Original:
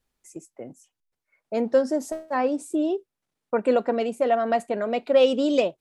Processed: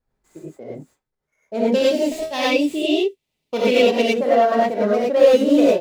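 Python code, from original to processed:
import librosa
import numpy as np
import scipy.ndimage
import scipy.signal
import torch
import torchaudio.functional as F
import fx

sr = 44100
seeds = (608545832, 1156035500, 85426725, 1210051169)

y = scipy.signal.medfilt(x, 15)
y = fx.high_shelf_res(y, sr, hz=2000.0, db=10.5, q=3.0, at=(1.72, 4.02))
y = fx.rev_gated(y, sr, seeds[0], gate_ms=130, shape='rising', drr_db=-7.0)
y = y * 10.0 ** (-1.0 / 20.0)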